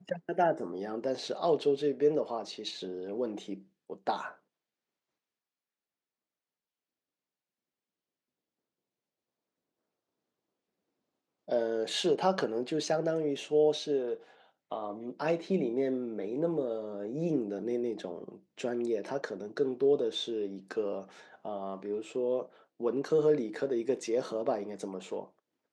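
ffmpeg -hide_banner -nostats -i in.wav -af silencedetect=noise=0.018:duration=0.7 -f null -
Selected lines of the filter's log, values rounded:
silence_start: 4.29
silence_end: 11.49 | silence_duration: 7.21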